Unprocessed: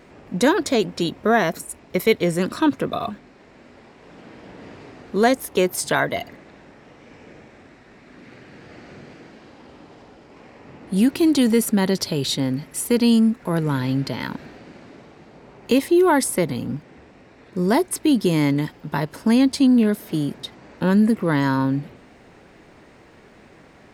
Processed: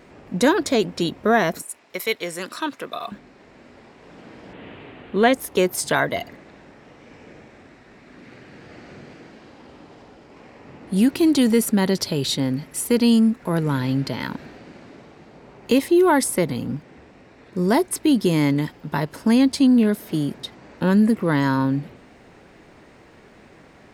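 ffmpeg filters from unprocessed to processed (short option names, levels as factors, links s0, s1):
-filter_complex "[0:a]asettb=1/sr,asplit=3[s0][s1][s2];[s0]atrim=end=1.624[s3];[s1]atrim=start=1.62:end=3.12,asetpts=PTS-STARTPTS,afade=t=in:d=0.004:c=qsin,afade=t=out:st=1.496:d=0.004:c=qsin,highpass=f=1100:p=1[s4];[s2]atrim=start=3.116[s5];[s3][s4]acrossfade=d=0.004:c1=hsin:c2=qsin[s6];[s6][s5]acrossfade=d=0.004:c1=qsin:c2=hsin,asettb=1/sr,asplit=3[s7][s8][s9];[s7]atrim=end=4.534[s10];[s8]atrim=start=4.53:end=5.33,asetpts=PTS-STARTPTS,afade=t=in:d=0.004:c=qsin,afade=t=out:st=0.796:d=0.004:c=qsin,highshelf=f=4100:t=q:w=3:g=-9.5[s11];[s9]atrim=start=5.326[s12];[s10][s11]acrossfade=d=0.004:c1=hsin:c2=qsin[s13];[s13][s12]acrossfade=d=0.004:c1=qsin:c2=hsin"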